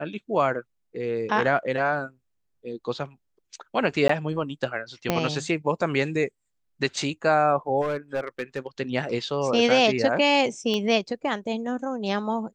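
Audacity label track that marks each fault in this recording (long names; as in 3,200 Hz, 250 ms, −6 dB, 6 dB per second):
4.080000	4.090000	drop-out 14 ms
5.100000	5.100000	click −7 dBFS
7.810000	8.670000	clipping −22.5 dBFS
10.740000	10.740000	click −15 dBFS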